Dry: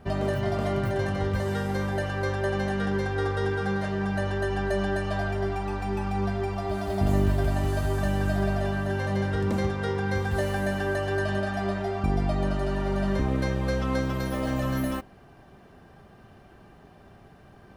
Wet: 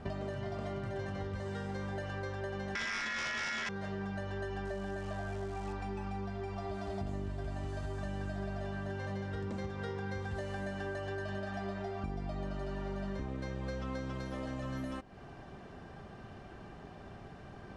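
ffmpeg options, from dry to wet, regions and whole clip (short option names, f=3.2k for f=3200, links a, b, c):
-filter_complex "[0:a]asettb=1/sr,asplit=3[a][b][c];[a]atrim=end=2.754[d];[b]atrim=start=2.75:end=3.69,asetpts=PTS-STARTPTS,afade=t=in:d=0.004:c=qsin,afade=t=out:st=0.936:d=0.004:c=qsin,lowpass=6.5k,aeval=exprs='val(0)*sin(2*PI*1800*n/s)':c=same,aeval=exprs='0.15*sin(PI/2*2.82*val(0)/0.15)':c=same[e];[c]atrim=start=3.686[f];[d][e]acrossfade=d=0.004:c1=hsin:c2=qsin[g];[g][f]acrossfade=d=0.004:c1=qsin:c2=hsin,asettb=1/sr,asplit=3[h][i][j];[h]atrim=end=4.654[k];[i]atrim=start=4.65:end=5.73,asetpts=PTS-STARTPTS,afade=t=in:d=0.004:c=qsin,afade=t=out:st=1.076:d=0.004:c=qsin,lowpass=f=3k:p=1,acrusher=bits=8:dc=4:mix=0:aa=0.000001[l];[j]atrim=start=5.726[m];[k][l]acrossfade=d=0.004:c1=hsin:c2=qsin[n];[n][m]acrossfade=d=0.004:c1=qsin:c2=hsin,acompressor=threshold=-39dB:ratio=6,lowpass=f=8.2k:w=0.5412,lowpass=f=8.2k:w=1.3066,volume=2dB"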